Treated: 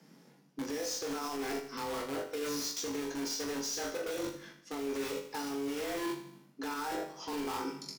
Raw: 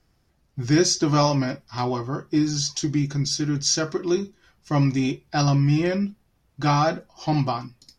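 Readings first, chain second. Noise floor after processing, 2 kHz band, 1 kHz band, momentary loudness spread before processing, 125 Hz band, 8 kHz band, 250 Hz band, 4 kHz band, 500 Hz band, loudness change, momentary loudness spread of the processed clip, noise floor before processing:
−62 dBFS, −9.0 dB, −13.0 dB, 9 LU, −32.0 dB, −11.5 dB, −15.0 dB, −12.0 dB, −9.5 dB, −13.5 dB, 6 LU, −66 dBFS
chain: frequency shifter +140 Hz
in parallel at −3 dB: wrap-around overflow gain 22.5 dB
on the sum: double-tracking delay 41 ms −9 dB
flutter between parallel walls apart 3.7 metres, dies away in 0.22 s
brickwall limiter −14.5 dBFS, peak gain reduction 10 dB
reversed playback
downward compressor 5 to 1, threshold −36 dBFS, peak gain reduction 15.5 dB
reversed playback
repeating echo 79 ms, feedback 50%, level −11.5 dB

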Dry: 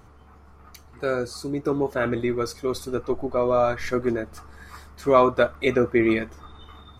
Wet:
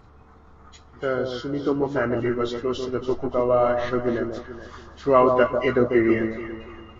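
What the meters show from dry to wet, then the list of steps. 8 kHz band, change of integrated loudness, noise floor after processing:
can't be measured, +1.0 dB, −50 dBFS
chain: hearing-aid frequency compression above 1,700 Hz 1.5 to 1
delay that swaps between a low-pass and a high-pass 144 ms, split 1,100 Hz, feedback 57%, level −5 dB

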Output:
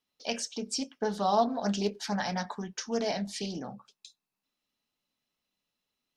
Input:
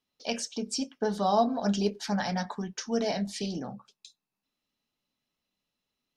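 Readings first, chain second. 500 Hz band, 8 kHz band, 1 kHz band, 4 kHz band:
−1.5 dB, 0.0 dB, −0.5 dB, −0.5 dB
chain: low-shelf EQ 370 Hz −4 dB
highs frequency-modulated by the lows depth 0.16 ms

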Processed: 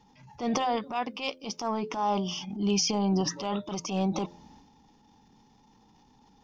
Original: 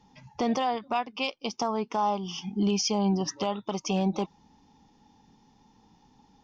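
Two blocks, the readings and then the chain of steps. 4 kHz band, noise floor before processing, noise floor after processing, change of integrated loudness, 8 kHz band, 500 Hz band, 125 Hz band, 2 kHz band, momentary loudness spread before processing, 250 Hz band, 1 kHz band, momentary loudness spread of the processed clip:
+0.5 dB, −62 dBFS, −61 dBFS, −1.0 dB, can't be measured, −1.5 dB, −0.5 dB, −1.5 dB, 8 LU, −1.0 dB, −1.5 dB, 9 LU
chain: transient designer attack −10 dB, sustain +7 dB
hum removal 86.61 Hz, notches 7

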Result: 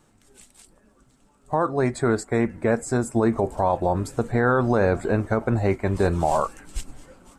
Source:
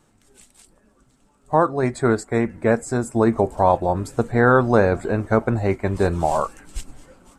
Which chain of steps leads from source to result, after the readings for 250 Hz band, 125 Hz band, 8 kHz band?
−2.5 dB, −2.0 dB, 0.0 dB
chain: brickwall limiter −11 dBFS, peak gain reduction 7 dB

